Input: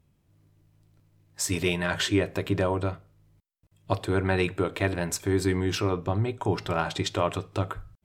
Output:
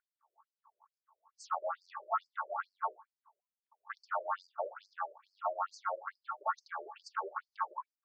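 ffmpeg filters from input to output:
-af "aresample=16000,asoftclip=type=tanh:threshold=-20dB,aresample=44100,firequalizer=gain_entry='entry(270,0);entry(1500,-24);entry(3900,-14);entry(6000,-20)':delay=0.05:min_phase=1,aeval=exprs='val(0)*sin(2*PI*1000*n/s)':c=same,lowshelf=f=340:g=-6.5,afftfilt=real='re*between(b*sr/1024,430*pow(6300/430,0.5+0.5*sin(2*PI*2.3*pts/sr))/1.41,430*pow(6300/430,0.5+0.5*sin(2*PI*2.3*pts/sr))*1.41)':imag='im*between(b*sr/1024,430*pow(6300/430,0.5+0.5*sin(2*PI*2.3*pts/sr))/1.41,430*pow(6300/430,0.5+0.5*sin(2*PI*2.3*pts/sr))*1.41)':win_size=1024:overlap=0.75,volume=2.5dB"

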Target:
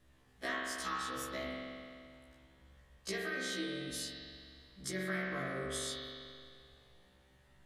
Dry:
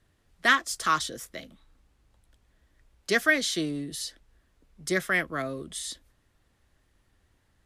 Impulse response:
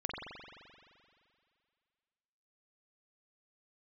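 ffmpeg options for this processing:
-filter_complex "[0:a]bandreject=f=1.4k:w=28,acompressor=threshold=-37dB:ratio=12[a];[1:a]atrim=start_sample=2205[b];[a][b]afir=irnorm=-1:irlink=0,afftfilt=real='re*1.73*eq(mod(b,3),0)':imag='im*1.73*eq(mod(b,3),0)':win_size=2048:overlap=0.75,volume=3dB"

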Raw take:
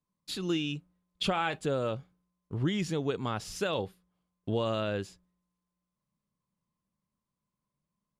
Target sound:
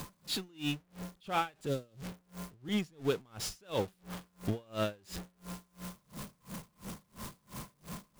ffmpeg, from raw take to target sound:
-filter_complex "[0:a]aeval=exprs='val(0)+0.5*0.0211*sgn(val(0))':c=same,asettb=1/sr,asplit=3[a][b][c];[a]atrim=end=1.664[d];[b]atrim=start=1.66:end=2.69,asetpts=PTS-STARTPTS,afade=t=in:d=0.004:c=qsin,afade=t=out:st=1.026:d=0.004:c=qsin,acrossover=split=440|3000[e][f][g];[f]acompressor=threshold=-41dB:ratio=6[h];[e][h][g]amix=inputs=3:normalize=0[i];[c]atrim=start=2.686[j];[d][i]acrossfade=d=0.004:c1=hsin:c2=qsin[k];[k][j]acrossfade=d=0.004:c1=qsin:c2=hsin,aeval=exprs='val(0)*pow(10,-33*(0.5-0.5*cos(2*PI*2.9*n/s))/20)':c=same"

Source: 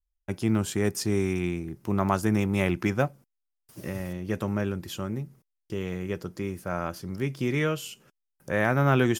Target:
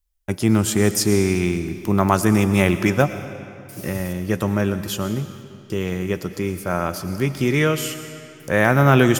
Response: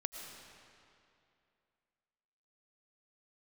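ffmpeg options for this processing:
-filter_complex "[0:a]asplit=2[a][b];[1:a]atrim=start_sample=2205,highshelf=f=4.1k:g=12[c];[b][c]afir=irnorm=-1:irlink=0,volume=-4dB[d];[a][d]amix=inputs=2:normalize=0,volume=4dB"

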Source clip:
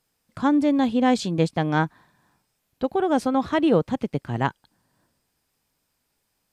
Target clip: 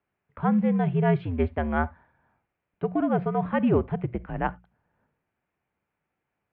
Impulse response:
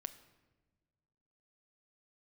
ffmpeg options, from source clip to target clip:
-filter_complex "[0:a]acrusher=bits=7:mode=log:mix=0:aa=0.000001,lowshelf=f=110:g=6,highpass=f=160:t=q:w=0.5412,highpass=f=160:t=q:w=1.307,lowpass=f=2.6k:t=q:w=0.5176,lowpass=f=2.6k:t=q:w=0.7071,lowpass=f=2.6k:t=q:w=1.932,afreqshift=-83,bandreject=f=60:t=h:w=6,bandreject=f=120:t=h:w=6,bandreject=f=180:t=h:w=6,asplit=2[a][b];[1:a]atrim=start_sample=2205,atrim=end_sample=3969[c];[b][c]afir=irnorm=-1:irlink=0,volume=3.5dB[d];[a][d]amix=inputs=2:normalize=0,volume=-9dB"

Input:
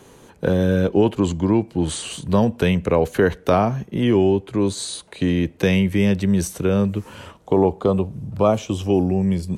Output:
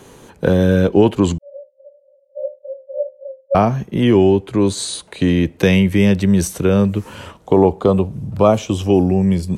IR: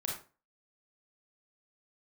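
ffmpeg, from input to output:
-filter_complex "[0:a]asettb=1/sr,asplit=3[a][b][c];[a]atrim=end=1.384[d];[b]atrim=start=1.38:end=3.55,asetpts=PTS-STARTPTS,afade=t=in:d=0.004:c=qsin,afade=t=out:st=2.166:d=0.004:c=qsin,asuperpass=centerf=560:order=20:qfactor=8[e];[c]atrim=start=3.546[f];[d][e]acrossfade=d=0.004:c1=hsin:c2=qsin[g];[g][f]acrossfade=d=0.004:c1=qsin:c2=hsin,volume=4.5dB"

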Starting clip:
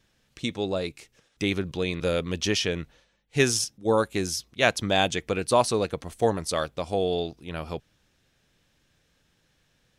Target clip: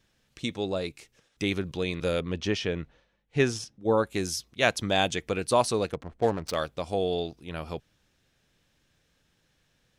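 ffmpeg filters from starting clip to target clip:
-filter_complex "[0:a]asettb=1/sr,asplit=3[a][b][c];[a]atrim=end=2.204[d];[b]atrim=start=2.2:end=4.07,asetpts=PTS-STARTPTS,afade=t=in:d=0.004:c=qsin,afade=t=out:st=1.866:d=0.004:c=qsin,aemphasis=mode=reproduction:type=75fm[e];[c]atrim=start=4.066[f];[d][e]acrossfade=d=0.004:c1=hsin:c2=qsin[g];[g][f]acrossfade=d=0.004:c1=qsin:c2=hsin,asettb=1/sr,asplit=3[h][i][j];[h]atrim=end=5.924[k];[i]atrim=start=5.92:end=6.56,asetpts=PTS-STARTPTS,afade=t=in:d=0.004:c=qsin,afade=t=out:st=0.636:d=0.004:c=qsin,adynamicsmooth=sensitivity=6.5:basefreq=870[l];[j]atrim=start=6.556[m];[k][l]acrossfade=d=0.004:c1=hsin:c2=qsin[n];[n][m]acrossfade=d=0.004:c1=qsin:c2=hsin,volume=-2dB"

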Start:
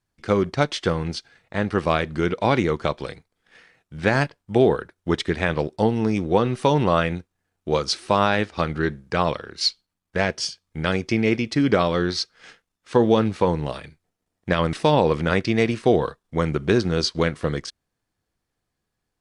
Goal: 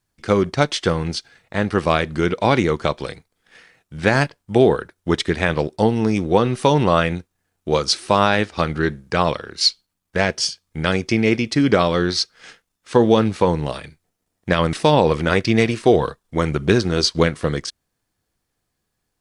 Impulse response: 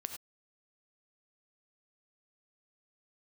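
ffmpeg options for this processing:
-filter_complex "[0:a]highshelf=f=6.1k:g=6.5,asplit=3[a][b][c];[a]afade=t=out:st=15.07:d=0.02[d];[b]aphaser=in_gain=1:out_gain=1:delay=3.4:decay=0.26:speed=1.8:type=triangular,afade=t=in:st=15.07:d=0.02,afade=t=out:st=17.25:d=0.02[e];[c]afade=t=in:st=17.25:d=0.02[f];[d][e][f]amix=inputs=3:normalize=0,volume=3dB"

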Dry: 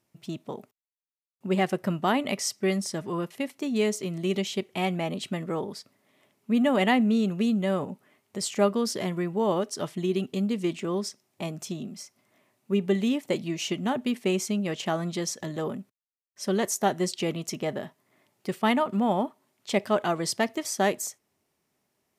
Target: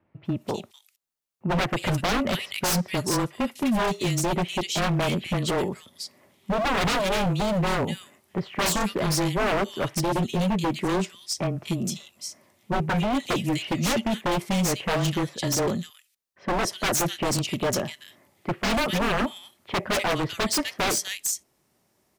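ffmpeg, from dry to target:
-filter_complex "[0:a]afreqshift=-20,acrossover=split=2400[a][b];[b]adelay=250[c];[a][c]amix=inputs=2:normalize=0,aeval=exprs='0.0501*(abs(mod(val(0)/0.0501+3,4)-2)-1)':c=same,volume=7.5dB"

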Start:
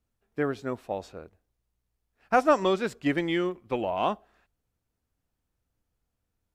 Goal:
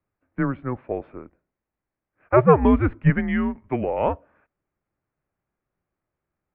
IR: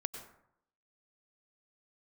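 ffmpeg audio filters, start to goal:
-filter_complex "[0:a]asettb=1/sr,asplit=3[a][b][c];[a]atrim=end=2.364[d];[b]atrim=start=2.36:end=3.1,asetpts=PTS-STARTPTS,afade=t=in:d=0.004:c=qsin,afade=t=out:st=0.736:d=0.004:c=qsin,lowshelf=f=310:g=10.5[e];[c]atrim=start=3.096[f];[d][e]acrossfade=d=0.004:c1=hsin:c2=qsin[g];[g][f]acrossfade=d=0.004:c1=qsin:c2=hsin,highpass=f=160:t=q:w=0.5412,highpass=f=160:t=q:w=1.307,lowpass=f=2.4k:t=q:w=0.5176,lowpass=f=2.4k:t=q:w=0.7071,lowpass=f=2.4k:t=q:w=1.932,afreqshift=-130,volume=4.5dB"

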